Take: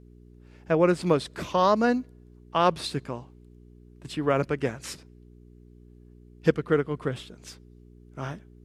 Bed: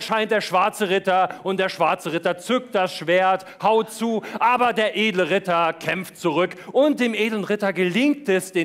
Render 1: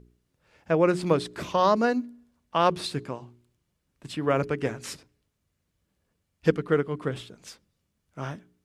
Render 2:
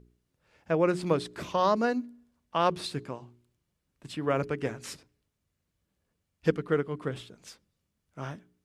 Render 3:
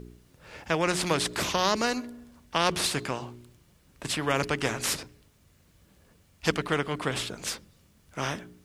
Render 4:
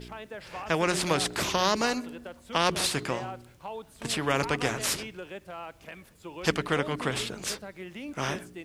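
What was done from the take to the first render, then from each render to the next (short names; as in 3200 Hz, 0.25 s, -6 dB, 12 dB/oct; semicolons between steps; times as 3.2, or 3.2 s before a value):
de-hum 60 Hz, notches 7
gain -3.5 dB
spectral compressor 2:1
add bed -21 dB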